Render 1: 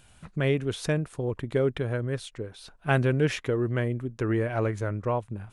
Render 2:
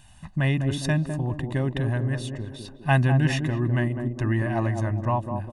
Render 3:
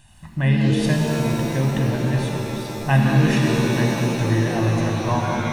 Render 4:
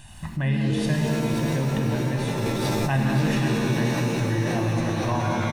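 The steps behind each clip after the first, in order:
comb filter 1.1 ms, depth 98%; on a send: feedback echo with a band-pass in the loop 204 ms, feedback 57%, band-pass 340 Hz, level −3.5 dB
reverb with rising layers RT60 2.6 s, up +7 semitones, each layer −2 dB, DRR 1 dB
in parallel at +2 dB: compressor whose output falls as the input rises −30 dBFS, ratio −1; on the sum: single-tap delay 531 ms −8 dB; level −7 dB

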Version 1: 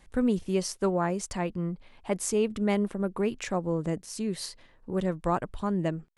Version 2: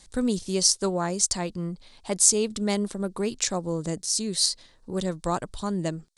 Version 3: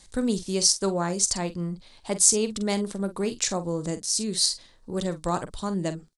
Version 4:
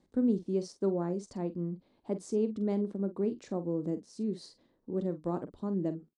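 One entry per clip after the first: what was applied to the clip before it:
flat-topped bell 6,000 Hz +15.5 dB
double-tracking delay 46 ms −12 dB
resonant band-pass 290 Hz, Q 1.5

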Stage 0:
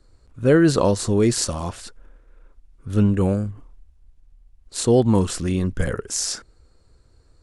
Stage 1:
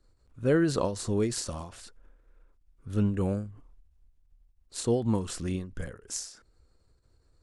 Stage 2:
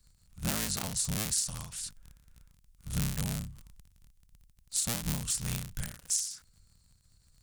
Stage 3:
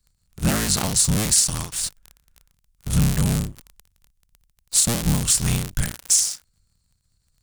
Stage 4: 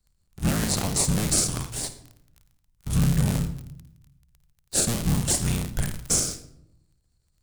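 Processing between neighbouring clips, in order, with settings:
every ending faded ahead of time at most 110 dB per second; level −8.5 dB
sub-harmonics by changed cycles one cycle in 3, inverted; drawn EQ curve 180 Hz 0 dB, 360 Hz −16 dB, 8,700 Hz +13 dB; downward compressor 2.5 to 1, threshold −29 dBFS, peak gain reduction 7.5 dB
leveller curve on the samples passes 3; level +2.5 dB
in parallel at −7 dB: sample-and-hold swept by an LFO 37×, swing 60% 0.85 Hz; on the sum: convolution reverb RT60 0.75 s, pre-delay 53 ms, DRR 11 dB; level −6 dB

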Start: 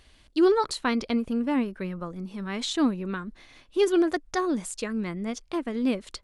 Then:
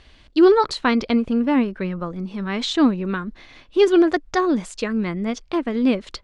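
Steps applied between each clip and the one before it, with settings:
low-pass filter 5,000 Hz 12 dB per octave
level +7 dB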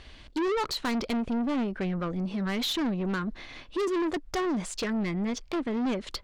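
in parallel at +1 dB: downward compressor, threshold −25 dBFS, peak gain reduction 15 dB
on the sum: soft clipping −20.5 dBFS, distortion −6 dB
level −5 dB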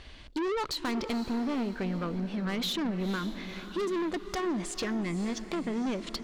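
downward compressor 2 to 1, threshold −32 dBFS, peak gain reduction 3 dB
feedback delay with all-pass diffusion 491 ms, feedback 46%, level −11.5 dB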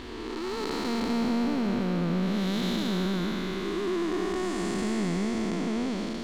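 spectrum smeared in time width 538 ms
backwards echo 834 ms −17 dB
level +7 dB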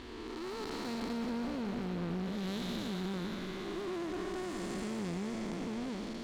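asymmetric clip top −32 dBFS
level −7 dB

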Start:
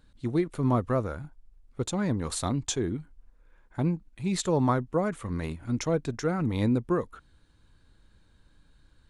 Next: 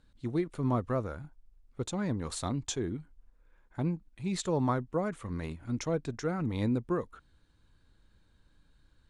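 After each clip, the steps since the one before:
low-pass filter 9,900 Hz 12 dB per octave
level −4.5 dB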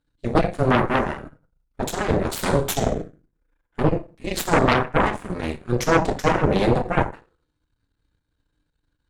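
feedback delay network reverb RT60 0.6 s, low-frequency decay 0.95×, high-frequency decay 0.75×, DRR −0.5 dB
harmonic generator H 3 −12 dB, 5 −41 dB, 6 −8 dB, 7 −32 dB, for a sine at −13 dBFS
level +7.5 dB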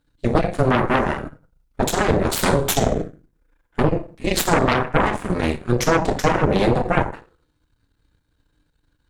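downward compressor, threshold −20 dBFS, peak gain reduction 9 dB
level +7 dB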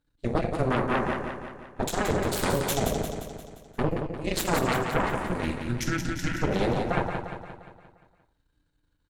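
gain on a spectral selection 0:05.45–0:06.43, 350–1,300 Hz −20 dB
on a send: repeating echo 175 ms, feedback 53%, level −6 dB
on the sum: level −8.5 dB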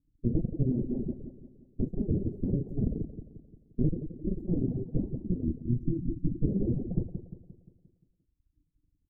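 inverse Chebyshev low-pass filter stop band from 1,100 Hz, stop band 60 dB
reverb reduction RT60 1.3 s
level +3 dB

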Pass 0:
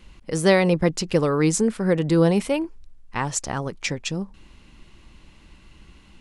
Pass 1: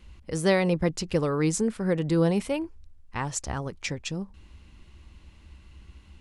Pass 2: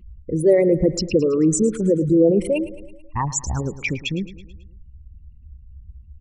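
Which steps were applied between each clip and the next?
parametric band 71 Hz +14 dB 0.72 octaves; level −5.5 dB
spectral envelope exaggerated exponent 3; repeating echo 109 ms, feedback 57%, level −16 dB; level +7.5 dB

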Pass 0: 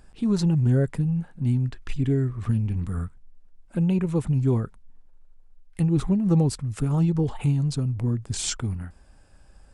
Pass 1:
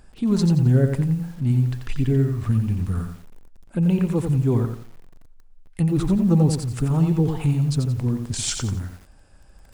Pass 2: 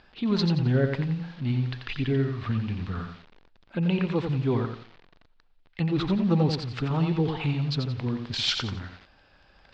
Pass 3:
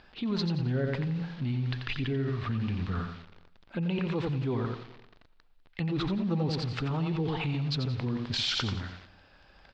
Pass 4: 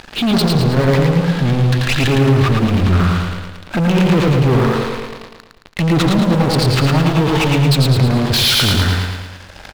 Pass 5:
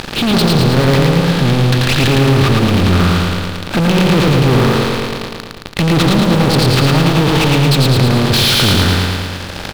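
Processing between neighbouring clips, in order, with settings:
feedback echo at a low word length 88 ms, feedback 35%, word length 8 bits, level −6 dB; level +2 dB
Butterworth low-pass 4,300 Hz 36 dB per octave; spectral tilt +3 dB per octave; level +1.5 dB
repeating echo 200 ms, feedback 31%, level −21.5 dB; in parallel at +1 dB: compressor whose output falls as the input rises −30 dBFS, ratio −1; on the sum: level −8.5 dB
leveller curve on the samples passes 5; on a send: repeating echo 110 ms, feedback 52%, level −4 dB; on the sum: level +5 dB
compressor on every frequency bin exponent 0.6; level −1 dB

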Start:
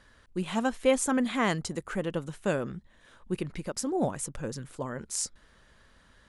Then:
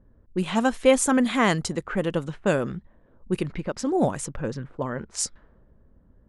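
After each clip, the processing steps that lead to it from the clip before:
low-pass that shuts in the quiet parts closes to 340 Hz, open at −27 dBFS
level +6 dB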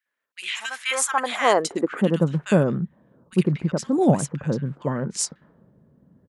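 high-pass filter sweep 2,200 Hz → 150 Hz, 0:00.63–0:02.19
multiband delay without the direct sound highs, lows 60 ms, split 1,500 Hz
level +2 dB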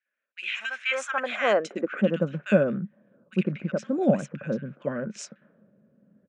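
loudspeaker in its box 160–6,100 Hz, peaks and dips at 210 Hz +9 dB, 570 Hz +10 dB, 920 Hz −8 dB, 1,500 Hz +9 dB, 2,500 Hz +10 dB, 4,600 Hz −9 dB
level −7.5 dB

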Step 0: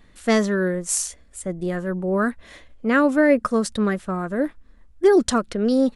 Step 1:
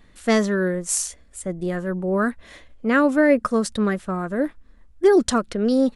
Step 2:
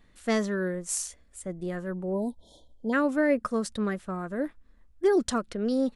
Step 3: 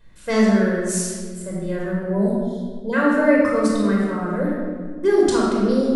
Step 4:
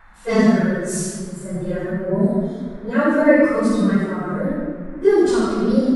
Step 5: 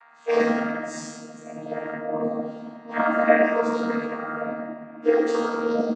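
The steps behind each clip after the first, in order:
no processing that can be heard
time-frequency box erased 0:02.13–0:02.93, 1,000–3,100 Hz; level −7.5 dB
convolution reverb RT60 1.7 s, pre-delay 20 ms, DRR −4.5 dB
random phases in long frames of 50 ms; noise in a band 730–1,900 Hz −51 dBFS; harmonic and percussive parts rebalanced harmonic +9 dB; level −7 dB
channel vocoder with a chord as carrier bare fifth, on D#3; high-pass filter 670 Hz 12 dB per octave; on a send: multi-tap delay 41/98 ms −20/−10.5 dB; on the sum: level +6.5 dB

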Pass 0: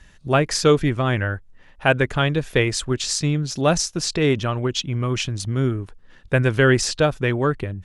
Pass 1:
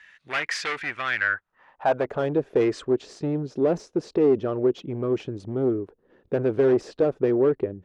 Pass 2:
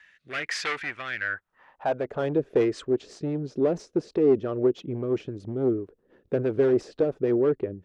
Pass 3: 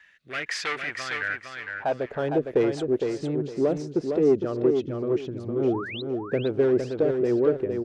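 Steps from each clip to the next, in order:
hard clipping −19 dBFS, distortion −7 dB; band-pass filter sweep 2,000 Hz → 410 Hz, 0:01.13–0:02.34; gain on a spectral selection 0:02.61–0:02.87, 980–9,300 Hz +7 dB; level +7.5 dB
rotating-speaker cabinet horn 1.1 Hz, later 6 Hz, at 0:01.98
sound drawn into the spectrogram rise, 0:05.52–0:06.02, 220–4,200 Hz −36 dBFS; repeating echo 459 ms, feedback 25%, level −5.5 dB

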